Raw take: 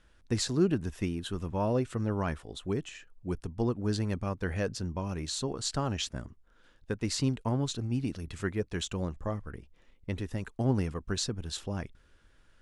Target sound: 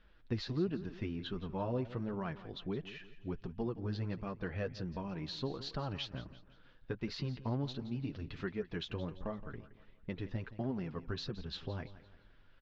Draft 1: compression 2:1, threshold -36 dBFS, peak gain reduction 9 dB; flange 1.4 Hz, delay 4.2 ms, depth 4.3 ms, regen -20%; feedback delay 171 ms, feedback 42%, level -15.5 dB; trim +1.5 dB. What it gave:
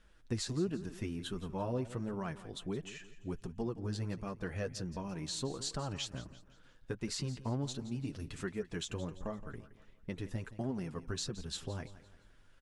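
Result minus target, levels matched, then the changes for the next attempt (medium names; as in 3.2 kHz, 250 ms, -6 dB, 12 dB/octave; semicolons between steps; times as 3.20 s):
8 kHz band +18.5 dB
add after compression: inverse Chebyshev low-pass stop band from 8.1 kHz, stop band 40 dB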